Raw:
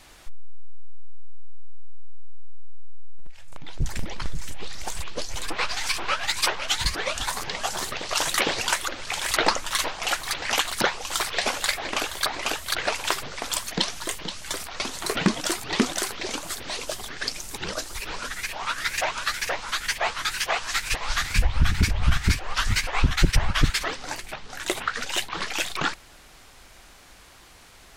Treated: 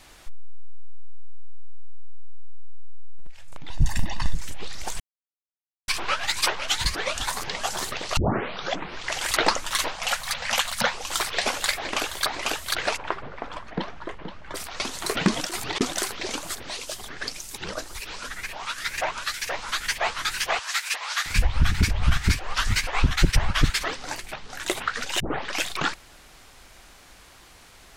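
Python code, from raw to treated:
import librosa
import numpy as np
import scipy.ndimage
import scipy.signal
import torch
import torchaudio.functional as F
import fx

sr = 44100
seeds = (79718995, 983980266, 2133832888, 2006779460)

y = fx.comb(x, sr, ms=1.1, depth=0.96, at=(3.7, 4.35))
y = fx.ellip_bandstop(y, sr, low_hz=240.0, high_hz=490.0, order=3, stop_db=40, at=(9.96, 10.93))
y = fx.lowpass(y, sr, hz=1500.0, slope=12, at=(12.96, 14.54), fade=0.02)
y = fx.over_compress(y, sr, threshold_db=-29.0, ratio=-0.5, at=(15.32, 15.81))
y = fx.harmonic_tremolo(y, sr, hz=1.6, depth_pct=50, crossover_hz=2200.0, at=(16.55, 19.54))
y = fx.highpass(y, sr, hz=820.0, slope=12, at=(20.59, 21.26))
y = fx.edit(y, sr, fx.silence(start_s=5.0, length_s=0.88),
    fx.tape_start(start_s=8.17, length_s=1.13),
    fx.tape_start(start_s=25.2, length_s=0.41), tone=tone)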